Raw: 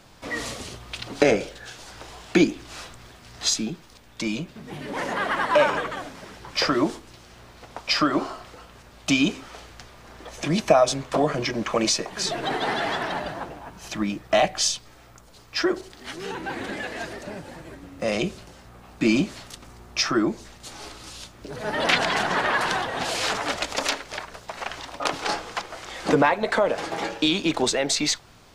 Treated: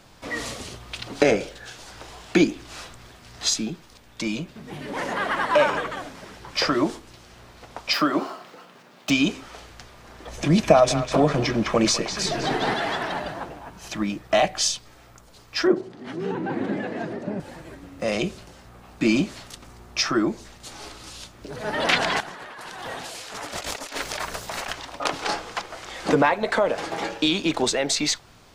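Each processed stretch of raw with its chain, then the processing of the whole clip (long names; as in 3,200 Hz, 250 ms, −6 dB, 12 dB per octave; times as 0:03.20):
0:07.93–0:09.10: running median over 5 samples + Butterworth high-pass 150 Hz
0:10.27–0:12.74: low-shelf EQ 300 Hz +8 dB + feedback echo with a band-pass in the loop 202 ms, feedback 61%, band-pass 2,300 Hz, level −6 dB
0:15.67–0:17.40: high-pass filter 150 Hz 24 dB per octave + spectral tilt −4.5 dB per octave
0:22.20–0:24.73: high-shelf EQ 7,300 Hz +11 dB + compressor whose output falls as the input rises −35 dBFS
whole clip: no processing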